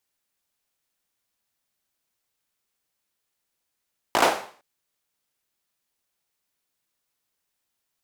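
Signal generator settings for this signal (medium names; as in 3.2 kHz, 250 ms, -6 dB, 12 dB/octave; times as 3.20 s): hand clap length 0.46 s, bursts 5, apart 18 ms, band 700 Hz, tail 0.47 s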